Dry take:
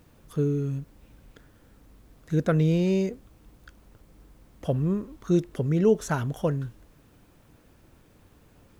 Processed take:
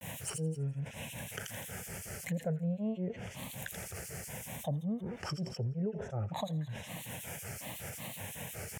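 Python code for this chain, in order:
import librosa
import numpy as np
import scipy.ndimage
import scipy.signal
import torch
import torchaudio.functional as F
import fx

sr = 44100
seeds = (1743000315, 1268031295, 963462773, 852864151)

y = fx.env_lowpass_down(x, sr, base_hz=610.0, full_db=-22.0)
y = scipy.signal.sosfilt(scipy.signal.butter(4, 100.0, 'highpass', fs=sr, output='sos'), y)
y = fx.high_shelf(y, sr, hz=2300.0, db=11.0)
y = fx.fixed_phaser(y, sr, hz=1200.0, stages=6)
y = fx.granulator(y, sr, seeds[0], grain_ms=187.0, per_s=5.4, spray_ms=33.0, spread_st=3)
y = fx.echo_wet_highpass(y, sr, ms=83, feedback_pct=51, hz=3500.0, wet_db=-6.5)
y = fx.env_flatten(y, sr, amount_pct=70)
y = y * librosa.db_to_amplitude(-6.5)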